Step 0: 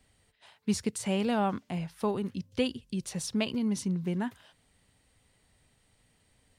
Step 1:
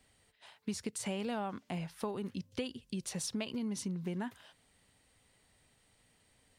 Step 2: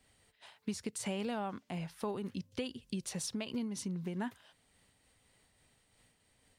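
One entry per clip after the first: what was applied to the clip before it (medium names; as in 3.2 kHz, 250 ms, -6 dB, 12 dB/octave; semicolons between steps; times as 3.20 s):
bass shelf 190 Hz -6 dB; compression 6:1, threshold -34 dBFS, peak gain reduction 10 dB
random flutter of the level, depth 55%; trim +2 dB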